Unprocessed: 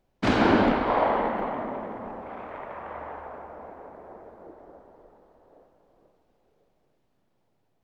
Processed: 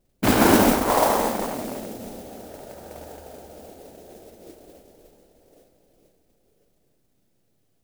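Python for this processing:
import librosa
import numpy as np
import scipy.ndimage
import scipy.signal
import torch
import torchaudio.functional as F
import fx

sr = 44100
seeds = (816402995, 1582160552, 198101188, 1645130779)

y = fx.wiener(x, sr, points=41)
y = fx.mod_noise(y, sr, seeds[0], snr_db=10)
y = y * 10.0 ** (4.0 / 20.0)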